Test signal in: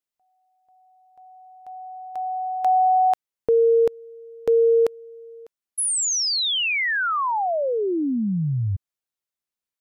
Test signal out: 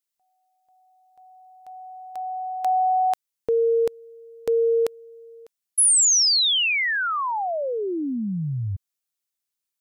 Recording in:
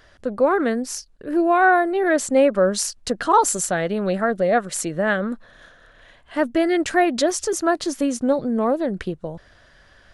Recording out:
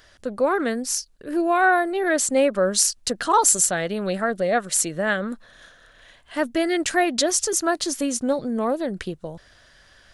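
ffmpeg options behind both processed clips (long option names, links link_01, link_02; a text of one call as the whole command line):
ffmpeg -i in.wav -af "highshelf=frequency=2900:gain=10.5,volume=-3.5dB" out.wav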